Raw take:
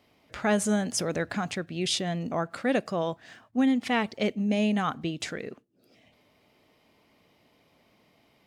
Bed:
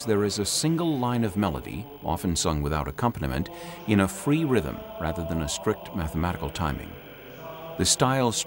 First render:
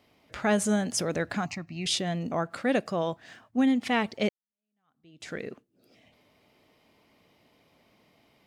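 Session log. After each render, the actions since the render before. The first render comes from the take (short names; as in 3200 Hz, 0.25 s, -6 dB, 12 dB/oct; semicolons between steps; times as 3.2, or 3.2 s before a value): 1.46–1.86 fixed phaser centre 2300 Hz, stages 8; 4.29–5.34 fade in exponential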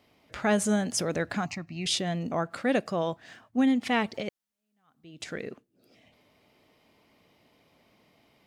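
4.14–5.24 negative-ratio compressor -32 dBFS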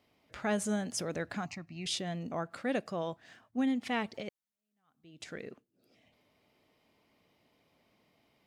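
gain -7 dB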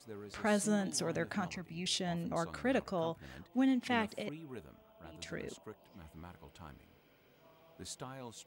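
add bed -24.5 dB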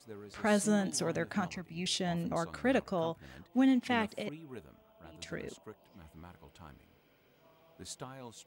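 in parallel at +2.5 dB: limiter -31 dBFS, peak gain reduction 10.5 dB; on the sum: upward expander 1.5:1, over -40 dBFS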